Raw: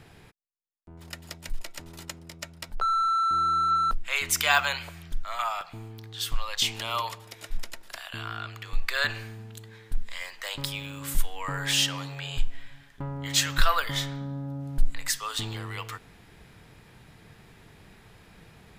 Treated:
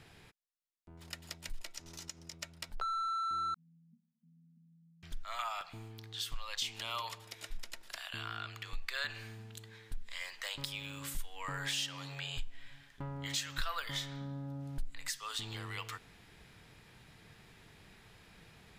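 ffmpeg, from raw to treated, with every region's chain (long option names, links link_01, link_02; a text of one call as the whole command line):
ffmpeg -i in.wav -filter_complex "[0:a]asettb=1/sr,asplit=3[link_01][link_02][link_03];[link_01]atrim=end=1.754[link_04];[link_02]atrim=start=1.75:end=2.33,asetpts=PTS-STARTPTS,afade=type=in:duration=0.004:curve=qsin,afade=type=out:start_time=0.576:duration=0.004:curve=qsin,equalizer=frequency=5900:width_type=o:width=0.54:gain=11,acompressor=threshold=-40dB:ratio=2:attack=3.2:release=140:knee=1:detection=peak[link_05];[link_03]atrim=start=2.326[link_06];[link_04][link_05]acrossfade=duration=0.004:curve1=hsin:curve2=qsin[link_07];[link_07][link_06]acrossfade=duration=0.004:curve1=qsin:curve2=hsin,asettb=1/sr,asplit=3[link_08][link_09][link_10];[link_08]atrim=end=3.544[link_11];[link_09]atrim=start=3.54:end=5.03,asetpts=PTS-STARTPTS,afade=type=in:duration=0.004:curve=qsin,afade=type=out:start_time=1.486:duration=0.004:curve=qsin,asuperpass=centerf=190:order=20:qfactor=2.2,aecho=1:1:2.7:0.7,atrim=end_sample=65709[link_12];[link_10]atrim=start=5.026[link_13];[link_11][link_12]acrossfade=duration=0.004:curve1=hsin:curve2=qsin[link_14];[link_14][link_13]acrossfade=duration=0.004:curve1=qsin:curve2=hsin,highshelf=frequency=2300:gain=10,acompressor=threshold=-28dB:ratio=2.5,highshelf=frequency=6900:gain=-9.5,volume=-7.5dB" out.wav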